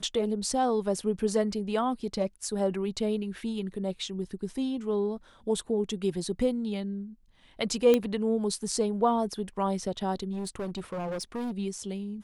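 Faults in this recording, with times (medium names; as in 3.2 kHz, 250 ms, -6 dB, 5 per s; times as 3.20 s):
7.94 s: pop -11 dBFS
10.32–11.52 s: clipped -30 dBFS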